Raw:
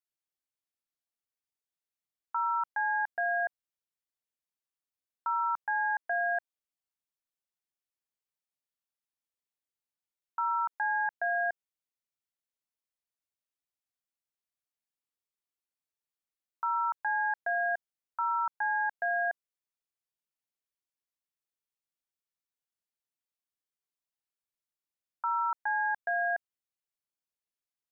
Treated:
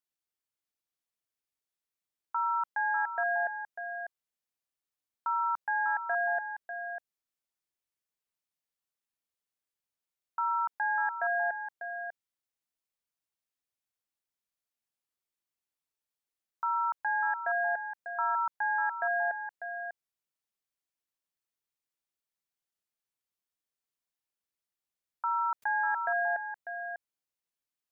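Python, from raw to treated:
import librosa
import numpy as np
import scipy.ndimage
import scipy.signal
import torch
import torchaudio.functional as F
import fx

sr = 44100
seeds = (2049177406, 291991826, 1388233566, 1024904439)

y = x + 10.0 ** (-8.5 / 20.0) * np.pad(x, (int(596 * sr / 1000.0), 0))[:len(x)]
y = fx.env_flatten(y, sr, amount_pct=50, at=(25.62, 26.2))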